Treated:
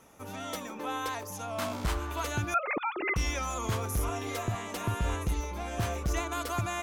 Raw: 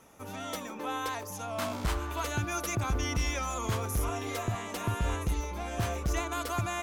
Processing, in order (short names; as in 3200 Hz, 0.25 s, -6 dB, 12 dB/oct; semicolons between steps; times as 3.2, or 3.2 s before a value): 2.54–3.16 sine-wave speech